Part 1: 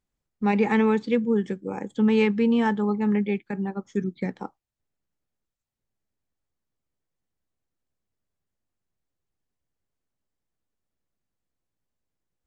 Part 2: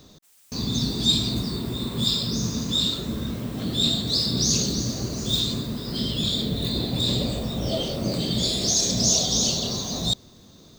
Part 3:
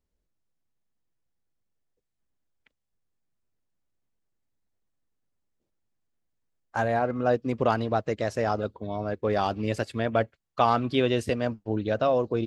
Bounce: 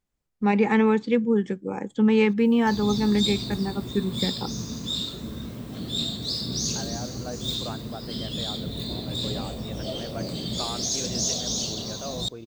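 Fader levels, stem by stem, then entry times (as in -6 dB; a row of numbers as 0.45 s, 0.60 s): +1.0 dB, -6.0 dB, -13.5 dB; 0.00 s, 2.15 s, 0.00 s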